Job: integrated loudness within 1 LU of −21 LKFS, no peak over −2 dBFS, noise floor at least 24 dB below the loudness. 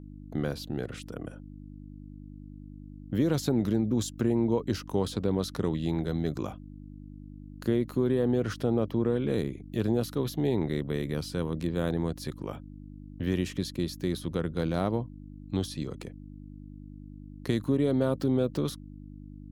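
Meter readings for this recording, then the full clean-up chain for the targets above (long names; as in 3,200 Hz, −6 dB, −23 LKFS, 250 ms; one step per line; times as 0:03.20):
mains hum 50 Hz; hum harmonics up to 300 Hz; level of the hum −42 dBFS; integrated loudness −30.0 LKFS; sample peak −14.0 dBFS; target loudness −21.0 LKFS
→ hum removal 50 Hz, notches 6
level +9 dB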